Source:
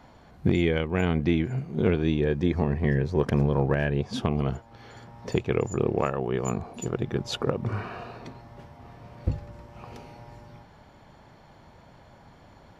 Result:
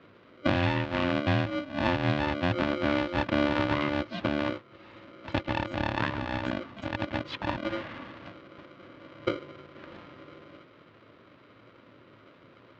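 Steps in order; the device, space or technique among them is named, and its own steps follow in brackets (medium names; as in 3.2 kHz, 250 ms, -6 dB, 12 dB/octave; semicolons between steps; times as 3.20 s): ring modulator pedal into a guitar cabinet (polarity switched at an audio rate 440 Hz; cabinet simulation 76–3700 Hz, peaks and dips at 110 Hz +10 dB, 280 Hz +3 dB, 770 Hz -7 dB); trim -3 dB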